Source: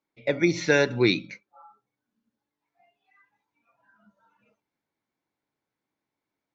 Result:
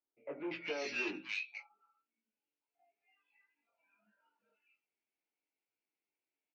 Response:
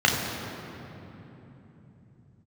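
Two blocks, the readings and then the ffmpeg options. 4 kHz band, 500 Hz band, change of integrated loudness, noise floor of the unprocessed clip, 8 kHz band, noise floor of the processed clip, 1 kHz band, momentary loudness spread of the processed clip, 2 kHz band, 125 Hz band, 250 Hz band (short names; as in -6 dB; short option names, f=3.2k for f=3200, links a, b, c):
-14.5 dB, -18.5 dB, -16.0 dB, under -85 dBFS, n/a, under -85 dBFS, -14.0 dB, 11 LU, -13.0 dB, -31.5 dB, -19.5 dB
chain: -filter_complex "[0:a]equalizer=f=1.1k:t=o:w=0.45:g=-7,asoftclip=type=tanh:threshold=-23.5dB,flanger=delay=17.5:depth=2.7:speed=1.4,highpass=480,equalizer=f=560:t=q:w=4:g=-6,equalizer=f=800:t=q:w=4:g=-4,equalizer=f=1.1k:t=q:w=4:g=-6,equalizer=f=1.7k:t=q:w=4:g=-6,equalizer=f=2.6k:t=q:w=4:g=8,equalizer=f=3.7k:t=q:w=4:g=-10,lowpass=f=4.7k:w=0.5412,lowpass=f=4.7k:w=1.3066,acrossover=split=1400[a][b];[b]adelay=240[c];[a][c]amix=inputs=2:normalize=0,volume=-1.5dB" -ar 22050 -c:a libmp3lame -b:a 32k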